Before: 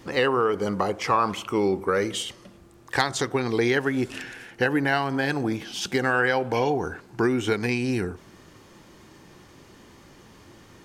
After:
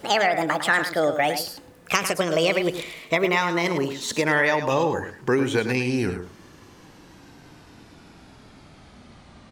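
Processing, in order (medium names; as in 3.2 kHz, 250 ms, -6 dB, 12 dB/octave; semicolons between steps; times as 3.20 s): gliding tape speed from 164% -> 64%; delay 105 ms -9.5 dB; trim +1.5 dB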